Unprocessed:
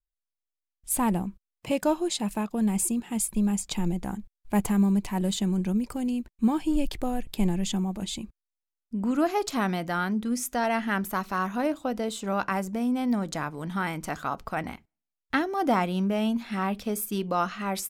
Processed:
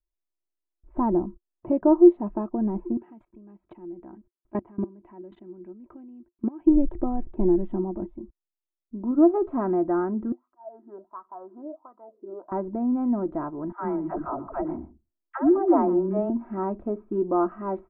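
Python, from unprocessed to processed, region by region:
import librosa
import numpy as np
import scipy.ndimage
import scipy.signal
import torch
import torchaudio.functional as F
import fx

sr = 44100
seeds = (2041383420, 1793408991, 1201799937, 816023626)

y = fx.chain(x, sr, fx.weighting(curve='D'),
    fx.level_steps(step_db=23), at=(2.97, 6.67))
y = fx.chain(y, sr, fx.lowpass(hz=1000.0, slope=6),
    fx.upward_expand(threshold_db=-33.0, expansion=1.5), at=(8.06, 9.34))
y = fx.chain(y, sr, fx.auto_swell(attack_ms=454.0),
    fx.wah_lfo(hz=1.4, low_hz=340.0, high_hz=1200.0, q=9.3), at=(10.32, 12.52))
y = fx.chain(y, sr, fx.dispersion(late='lows', ms=128.0, hz=370.0),
    fx.echo_single(ms=119, db=-17.0), at=(13.72, 16.3))
y = scipy.signal.sosfilt(scipy.signal.cheby2(4, 70, 4800.0, 'lowpass', fs=sr, output='sos'), y)
y = fx.peak_eq(y, sr, hz=350.0, db=13.5, octaves=0.23)
y = y + 0.5 * np.pad(y, (int(3.1 * sr / 1000.0), 0))[:len(y)]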